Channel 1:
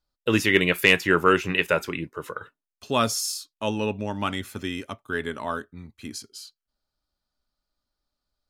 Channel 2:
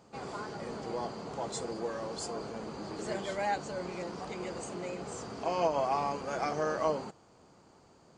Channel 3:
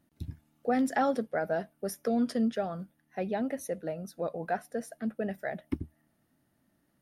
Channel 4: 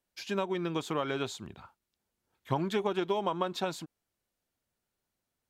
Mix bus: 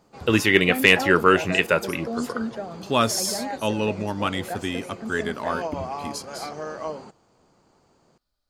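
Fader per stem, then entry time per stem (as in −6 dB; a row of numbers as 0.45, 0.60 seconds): +2.0, −1.5, −1.5, −20.0 decibels; 0.00, 0.00, 0.00, 0.00 seconds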